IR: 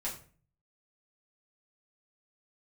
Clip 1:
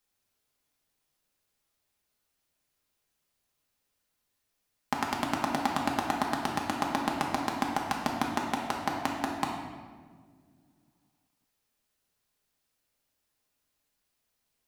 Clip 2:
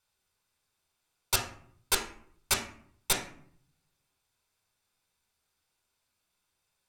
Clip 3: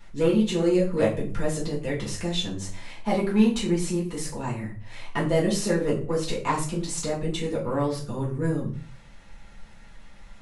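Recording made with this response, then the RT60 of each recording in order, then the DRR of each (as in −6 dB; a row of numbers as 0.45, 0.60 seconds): 3; 1.7, 0.60, 0.40 seconds; −1.5, 1.5, −7.0 decibels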